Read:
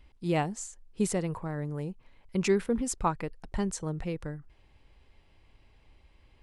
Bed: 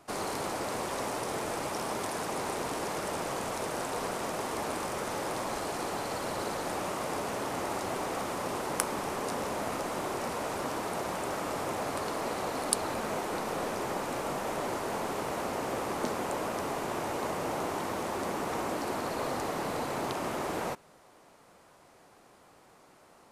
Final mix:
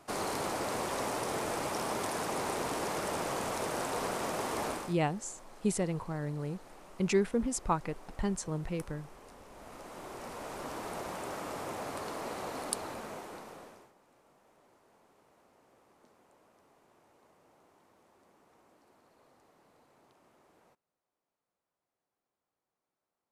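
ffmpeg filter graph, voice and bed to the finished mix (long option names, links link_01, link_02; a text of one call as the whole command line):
ffmpeg -i stem1.wav -i stem2.wav -filter_complex "[0:a]adelay=4650,volume=-2dB[link_01];[1:a]volume=14.5dB,afade=type=out:start_time=4.66:duration=0.3:silence=0.1,afade=type=in:start_time=9.48:duration=1.41:silence=0.177828,afade=type=out:start_time=12.6:duration=1.32:silence=0.0473151[link_02];[link_01][link_02]amix=inputs=2:normalize=0" out.wav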